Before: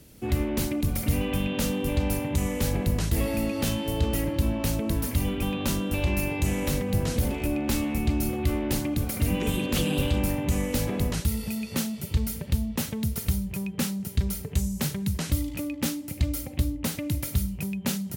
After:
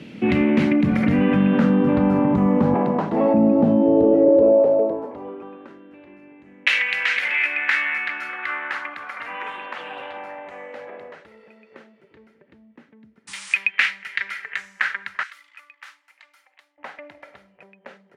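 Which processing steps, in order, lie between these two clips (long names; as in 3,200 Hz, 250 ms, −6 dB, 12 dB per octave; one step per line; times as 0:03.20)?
0:02.74–0:03.34: meter weighting curve A
high-pass filter sweep 200 Hz → 1,800 Hz, 0:03.60–0:05.81
0:15.23–0:16.78: first difference
in parallel at −0.5 dB: compressor whose output falls as the input rises −30 dBFS, ratio −1
on the sum: auto-filter low-pass saw down 0.15 Hz 240–2,700 Hz
0:13.27–0:13.55: sound drawn into the spectrogram noise 810–9,900 Hz −44 dBFS
level +4 dB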